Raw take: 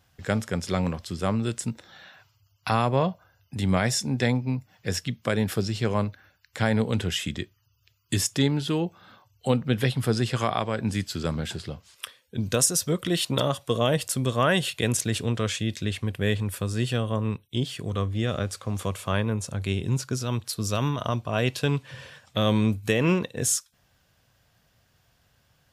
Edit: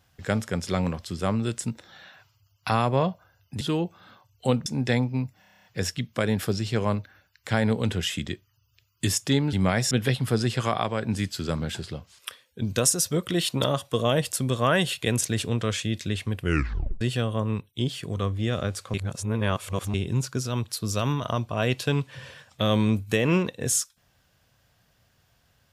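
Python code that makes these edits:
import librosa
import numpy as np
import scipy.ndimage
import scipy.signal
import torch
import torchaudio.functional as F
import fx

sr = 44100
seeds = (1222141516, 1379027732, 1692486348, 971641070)

y = fx.edit(x, sr, fx.swap(start_s=3.61, length_s=0.38, other_s=8.62, other_length_s=1.05),
    fx.stutter(start_s=4.73, slice_s=0.03, count=9),
    fx.tape_stop(start_s=16.16, length_s=0.61),
    fx.reverse_span(start_s=18.7, length_s=1.0), tone=tone)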